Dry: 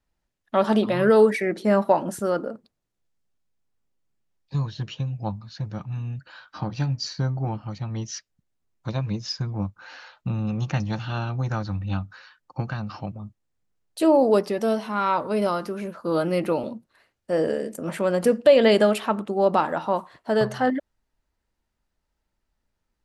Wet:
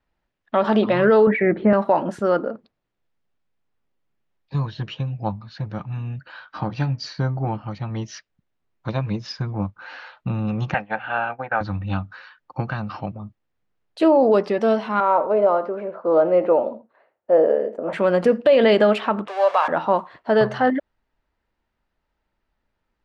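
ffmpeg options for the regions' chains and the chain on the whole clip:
-filter_complex "[0:a]asettb=1/sr,asplit=3[a][b][c];[a]atrim=end=1.274[d];[b]atrim=start=1.27:end=1.73,asetpts=PTS-STARTPTS,afade=t=in:d=0.004:c=qsin,afade=t=out:st=0.456:d=0.004:c=qsin,lowpass=f=2.5k:w=0.5412,lowpass=f=2.5k:w=1.3066,equalizer=f=75:w=0.53:g=13,acompressor=mode=upward:threshold=-27dB:ratio=2.5:attack=3.2:release=140:knee=2.83:detection=peak[e];[c]atrim=start=1.726[f];[d][e]acrossfade=d=0.004:c1=hsin:c2=qsin[g];[g][f]acrossfade=d=0.004:c1=qsin:c2=hsin,asettb=1/sr,asplit=3[h][i][j];[h]atrim=end=10.744[k];[i]atrim=start=10.74:end=11.61,asetpts=PTS-STARTPTS,afade=t=in:d=0.004:c=qsin,afade=t=out:st=0.866:d=0.004:c=qsin,highpass=330,equalizer=f=350:t=q:w=4:g=-8,equalizer=f=510:t=q:w=4:g=4,equalizer=f=760:t=q:w=4:g=8,equalizer=f=1.1k:t=q:w=4:g=-3,equalizer=f=1.6k:t=q:w=4:g=9,equalizer=f=2.4k:t=q:w=4:g=5,lowpass=f=2.7k:w=0.5412,lowpass=f=2.7k:w=1.3066,agate=range=-33dB:threshold=-33dB:ratio=3:release=100:detection=peak[l];[j]atrim=start=11.606[m];[k][l]acrossfade=d=0.004:c1=hsin:c2=qsin[n];[n][m]acrossfade=d=0.004:c1=qsin:c2=hsin,asettb=1/sr,asplit=3[o][p][q];[o]atrim=end=15.004[r];[p]atrim=start=15:end=17.93,asetpts=PTS-STARTPTS,afade=t=in:d=0.004:c=qsin,afade=t=out:st=2.926:d=0.004:c=qsin,acontrast=27,bandpass=f=620:t=q:w=1.7,aecho=1:1:83:0.168,atrim=end_sample=129213[s];[q]atrim=start=17.926[t];[r][s]acrossfade=d=0.004:c1=hsin:c2=qsin[u];[u][t]acrossfade=d=0.004:c1=qsin:c2=hsin,asettb=1/sr,asplit=3[v][w][x];[v]atrim=end=19.284[y];[w]atrim=start=19.28:end=19.68,asetpts=PTS-STARTPTS,afade=t=in:d=0.004:c=qsin,afade=t=out:st=0.396:d=0.004:c=qsin,aeval=exprs='val(0)+0.5*0.0316*sgn(val(0))':c=same,highpass=f=630:w=0.5412,highpass=f=630:w=1.3066,aecho=1:1:1.8:0.34,atrim=end_sample=17640[z];[x]atrim=start=19.676[aa];[y][z]acrossfade=d=0.004:c1=hsin:c2=qsin[ab];[ab][aa]acrossfade=d=0.004:c1=qsin:c2=hsin,lowpass=3.1k,lowshelf=f=250:g=-5.5,alimiter=level_in=12.5dB:limit=-1dB:release=50:level=0:latency=1,volume=-6.5dB"

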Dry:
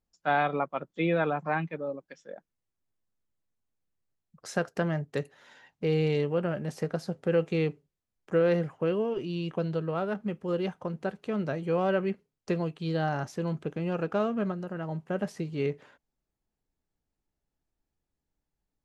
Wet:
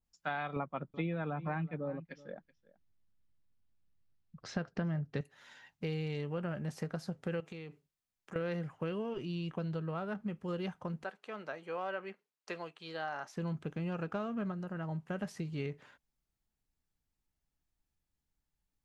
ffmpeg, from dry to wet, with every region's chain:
-filter_complex "[0:a]asettb=1/sr,asplit=3[a][b][c];[a]atrim=end=0.564[d];[b]atrim=start=0.56:end=5.21,asetpts=PTS-STARTPTS,afade=t=in:d=0.004:c=qsin,afade=t=out:st=4.646:d=0.004:c=qsin,lowpass=f=5k:w=0.5412,lowpass=f=5k:w=1.3066,lowshelf=f=460:g=9,aecho=1:1:378:0.0841,atrim=end_sample=205065[e];[c]atrim=start=5.206[f];[d][e]acrossfade=d=0.004:c1=hsin:c2=qsin[g];[g][f]acrossfade=d=0.004:c1=qsin:c2=hsin,asettb=1/sr,asplit=3[h][i][j];[h]atrim=end=7.404[k];[i]atrim=start=7.4:end=8.36,asetpts=PTS-STARTPTS,afade=t=in:d=0.004:c=qsin,afade=t=out:st=0.956:d=0.004:c=qsin,lowshelf=f=130:g=-11.5,acompressor=threshold=-36dB:ratio=16:attack=3.2:release=140:knee=1:detection=peak[l];[j]atrim=start=8.356[m];[k][l]acrossfade=d=0.004:c1=hsin:c2=qsin[n];[n][m]acrossfade=d=0.004:c1=qsin:c2=hsin,asettb=1/sr,asplit=3[o][p][q];[o]atrim=end=11.044[r];[p]atrim=start=11.04:end=13.37,asetpts=PTS-STARTPTS,afade=t=in:d=0.004:c=qsin,afade=t=out:st=2.326:d=0.004:c=qsin,highpass=530,highshelf=f=4.6k:g=-6[s];[q]atrim=start=13.366[t];[r][s]acrossfade=d=0.004:c1=hsin:c2=qsin[u];[u][t]acrossfade=d=0.004:c1=qsin:c2=hsin,equalizer=f=450:w=0.68:g=-8,acompressor=threshold=-33dB:ratio=6,adynamicequalizer=threshold=0.002:dfrequency=1800:dqfactor=0.7:tfrequency=1800:tqfactor=0.7:attack=5:release=100:ratio=0.375:range=2.5:mode=cutabove:tftype=highshelf"

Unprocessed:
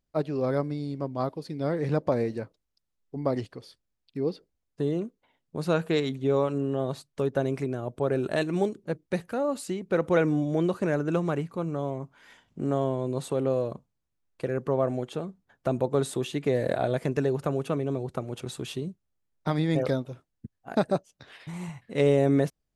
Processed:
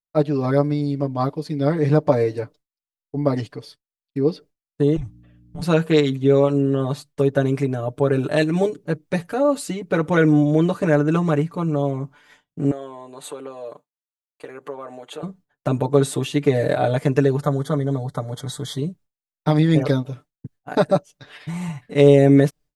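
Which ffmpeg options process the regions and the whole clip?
-filter_complex "[0:a]asettb=1/sr,asplit=3[a][b][c];[a]atrim=end=4.964[d];[b]atrim=start=4.96:end=5.62,asetpts=PTS-STARTPTS,afade=t=in:d=0.004:c=qsin,afade=t=out:st=0.656:d=0.004:c=qsin,acompressor=threshold=-33dB:ratio=4:attack=3.2:release=140:knee=1:detection=peak,afreqshift=-330,aeval=exprs='val(0)+0.00282*(sin(2*PI*60*n/s)+sin(2*PI*2*60*n/s)/2+sin(2*PI*3*60*n/s)/3+sin(2*PI*4*60*n/s)/4+sin(2*PI*5*60*n/s)/5)':c=same[e];[c]atrim=start=5.616[f];[d][e]acrossfade=d=0.004:c1=hsin:c2=qsin[g];[g][f]acrossfade=d=0.004:c1=qsin:c2=hsin,asettb=1/sr,asplit=3[h][i][j];[h]atrim=end=12.714[k];[i]atrim=start=12.71:end=15.23,asetpts=PTS-STARTPTS,afade=t=in:d=0.004:c=qsin,afade=t=out:st=2.516:d=0.004:c=qsin,equalizer=f=5.3k:w=7.8:g=-13,acompressor=threshold=-37dB:ratio=2:attack=3.2:release=140:knee=1:detection=peak,highpass=460[l];[j]atrim=start=15.226[m];[k][l]acrossfade=d=0.004:c1=hsin:c2=qsin[n];[n][m]acrossfade=d=0.004:c1=qsin:c2=hsin,asettb=1/sr,asplit=3[o][p][q];[o]atrim=end=17.424[r];[p]atrim=start=17.42:end=18.78,asetpts=PTS-STARTPTS,afade=t=in:d=0.004:c=qsin,afade=t=out:st=1.356:d=0.004:c=qsin,asuperstop=centerf=2600:order=12:qfactor=2.9,equalizer=f=350:t=o:w=0.57:g=-8[s];[q]atrim=start=18.776[t];[r][s]acrossfade=d=0.004:c1=hsin:c2=qsin[u];[u][t]acrossfade=d=0.004:c1=qsin:c2=hsin,agate=range=-33dB:threshold=-48dB:ratio=3:detection=peak,aecho=1:1:6.8:0.87,volume=5dB"

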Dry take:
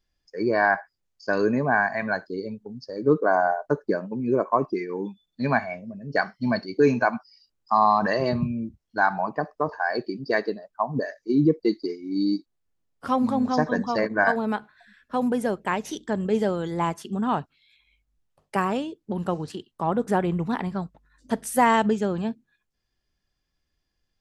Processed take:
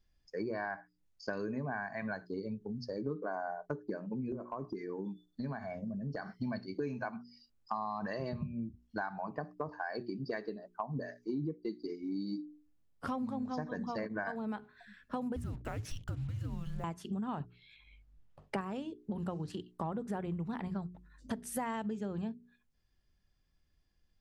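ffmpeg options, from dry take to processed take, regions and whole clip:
-filter_complex "[0:a]asettb=1/sr,asplit=3[a][b][c];[a]atrim=end=4.324[d];[b]atrim=start=4.32:end=6.31,asetpts=PTS-STARTPTS,afade=t=in:d=0.004:c=qsin,afade=t=out:st=1.986:d=0.004:c=qsin,equalizer=f=2.5k:t=o:w=0.44:g=-13,acompressor=threshold=-34dB:ratio=3:attack=3.2:release=140:knee=1:detection=peak[e];[c]atrim=start=6.306[f];[d][e]acrossfade=d=0.004:c1=hsin:c2=qsin[g];[g][f]acrossfade=d=0.004:c1=qsin:c2=hsin,asettb=1/sr,asplit=3[h][i][j];[h]atrim=end=15.364[k];[i]atrim=start=15.36:end=16.84,asetpts=PTS-STARTPTS,afade=t=in:d=0.004:c=qsin,afade=t=out:st=1.476:d=0.004:c=qsin,acompressor=threshold=-29dB:ratio=4:attack=3.2:release=140:knee=1:detection=peak,afreqshift=-320,acrusher=bits=7:mix=0:aa=0.5[l];[j]atrim=start=16.836[m];[k][l]acrossfade=d=0.004:c1=hsin:c2=qsin[n];[n][m]acrossfade=d=0.004:c1=qsin:c2=hsin,asettb=1/sr,asplit=3[o][p][q];[o]atrim=end=17.404[r];[p]atrim=start=17.4:end=18.61,asetpts=PTS-STARTPTS,afade=t=in:d=0.004:c=qsin,afade=t=out:st=1.206:d=0.004:c=qsin,aemphasis=mode=reproduction:type=50fm,acontrast=51[s];[q]atrim=start=18.606[t];[r][s]acrossfade=d=0.004:c1=hsin:c2=qsin[u];[u][t]acrossfade=d=0.004:c1=qsin:c2=hsin,bass=f=250:g=7,treble=f=4k:g=-2,bandreject=f=60:t=h:w=6,bandreject=f=120:t=h:w=6,bandreject=f=180:t=h:w=6,bandreject=f=240:t=h:w=6,bandreject=f=300:t=h:w=6,bandreject=f=360:t=h:w=6,bandreject=f=420:t=h:w=6,acompressor=threshold=-33dB:ratio=6,volume=-2.5dB"

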